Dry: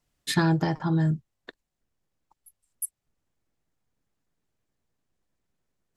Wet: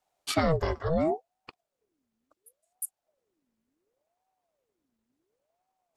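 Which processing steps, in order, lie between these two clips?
ring modulator with a swept carrier 490 Hz, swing 55%, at 0.7 Hz

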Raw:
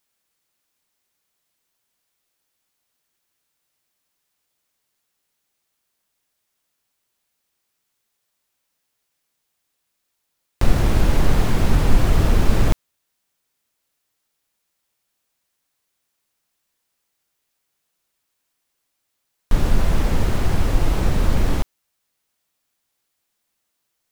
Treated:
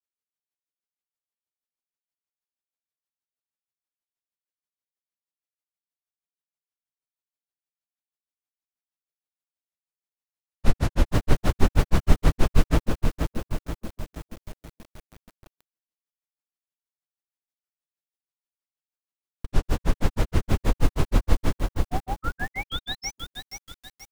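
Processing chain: tape echo 0.412 s, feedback 46%, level -3.5 dB, low-pass 1000 Hz; painted sound rise, 21.84–23.17, 530–6800 Hz -29 dBFS; gate with hold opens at -47 dBFS; grains 0.102 s, grains 6.3/s; lo-fi delay 0.478 s, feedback 55%, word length 7-bit, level -5.5 dB

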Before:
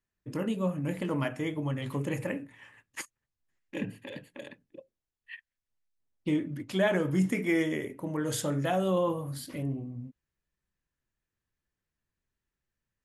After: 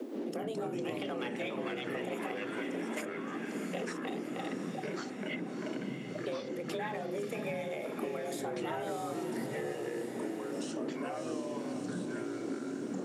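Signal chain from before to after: wind noise 150 Hz -41 dBFS; 0.81–1.84 bell 2900 Hz +12.5 dB 1.6 oct; compressor, threshold -41 dBFS, peak gain reduction 20 dB; sample leveller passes 1; frequency shift +220 Hz; echoes that change speed 0.128 s, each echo -4 st, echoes 3; on a send: diffused feedback echo 0.656 s, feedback 59%, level -10 dB; on the sum: three-band squash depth 70%

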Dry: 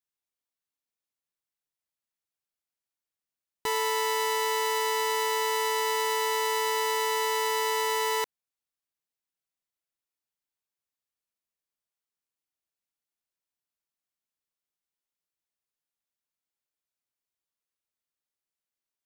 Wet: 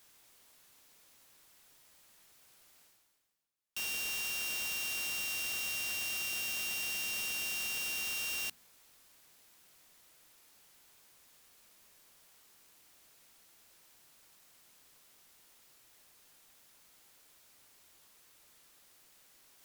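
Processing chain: varispeed -3%; reverse; upward compressor, threshold -40 dBFS; reverse; notches 60/120/180/240 Hz; wrapped overs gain 32 dB

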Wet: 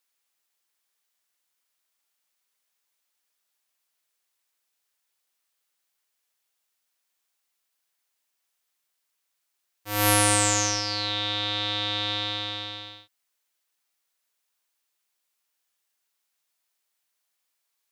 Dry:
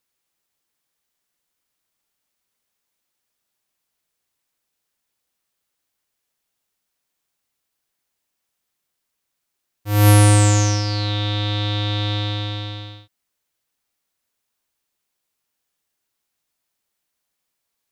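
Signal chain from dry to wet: HPF 840 Hz 6 dB/oct

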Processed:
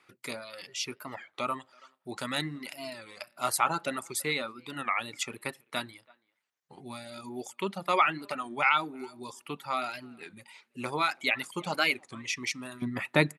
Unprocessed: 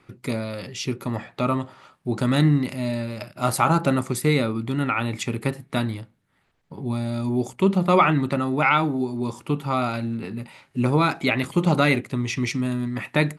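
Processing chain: HPF 1300 Hz 6 dB/oct, from 12.82 s 200 Hz; speakerphone echo 0.33 s, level -18 dB; reverb removal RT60 1.1 s; record warp 33 1/3 rpm, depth 160 cents; gain -1.5 dB

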